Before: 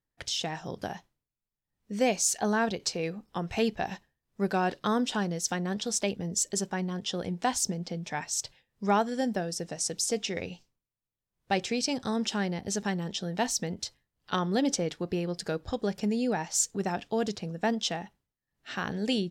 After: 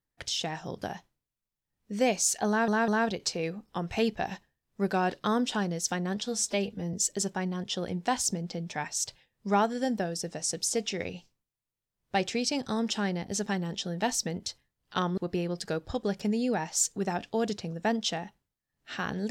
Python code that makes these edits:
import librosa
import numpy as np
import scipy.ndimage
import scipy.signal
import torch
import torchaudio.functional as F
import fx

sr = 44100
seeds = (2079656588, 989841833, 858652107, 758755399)

y = fx.edit(x, sr, fx.stutter(start_s=2.48, slice_s=0.2, count=3),
    fx.stretch_span(start_s=5.83, length_s=0.47, factor=1.5),
    fx.cut(start_s=14.54, length_s=0.42), tone=tone)